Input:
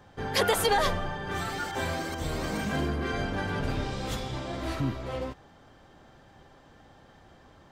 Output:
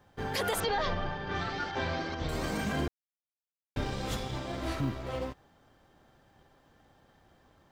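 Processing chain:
mu-law and A-law mismatch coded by A
0:00.60–0:02.29: Butterworth low-pass 5,500 Hz 36 dB per octave
brickwall limiter −21.5 dBFS, peak gain reduction 8.5 dB
0:02.88–0:03.76: silence

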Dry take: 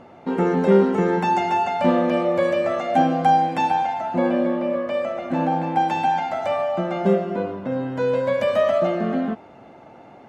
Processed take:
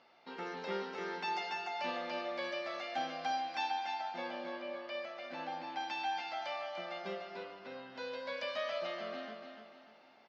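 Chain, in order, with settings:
resonant band-pass 5,000 Hz, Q 3.8
high-frequency loss of the air 240 metres
repeating echo 295 ms, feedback 40%, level −7 dB
level +10 dB

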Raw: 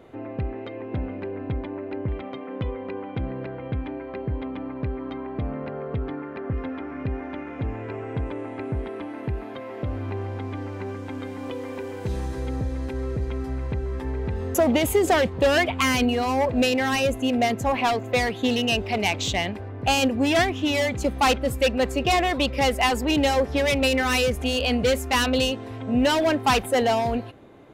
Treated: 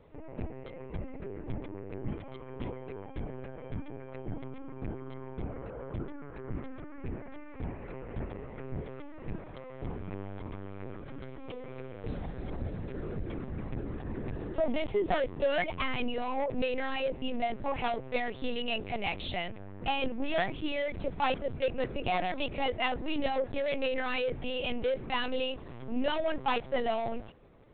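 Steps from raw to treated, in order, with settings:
0:01.10–0:02.24: dynamic equaliser 180 Hz, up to +5 dB, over −43 dBFS, Q 2
linear-prediction vocoder at 8 kHz pitch kept
level −9 dB

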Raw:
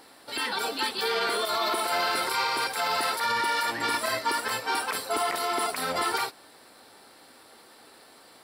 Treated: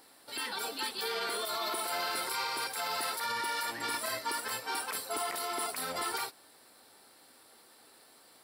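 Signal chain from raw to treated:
high-shelf EQ 6,800 Hz +9 dB
level −8.5 dB

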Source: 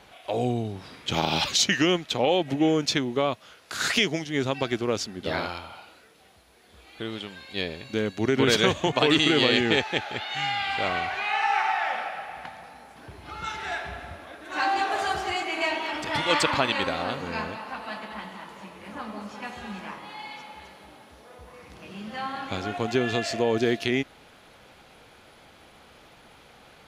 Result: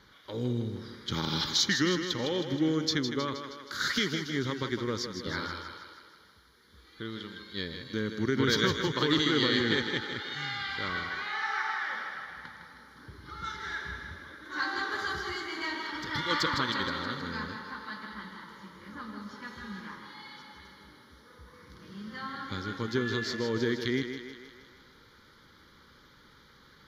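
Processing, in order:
phaser with its sweep stopped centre 2,600 Hz, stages 6
feedback echo with a high-pass in the loop 158 ms, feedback 58%, high-pass 210 Hz, level −7.5 dB
level −2.5 dB

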